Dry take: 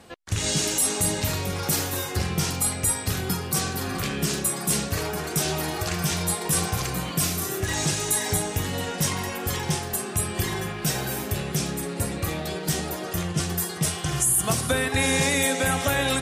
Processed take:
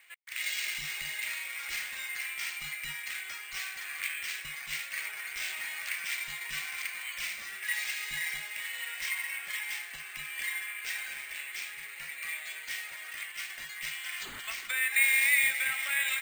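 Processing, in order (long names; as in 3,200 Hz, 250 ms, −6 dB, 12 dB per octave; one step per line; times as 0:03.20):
four-pole ladder band-pass 2,300 Hz, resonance 70%
bad sample-rate conversion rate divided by 4×, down none, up hold
level +5.5 dB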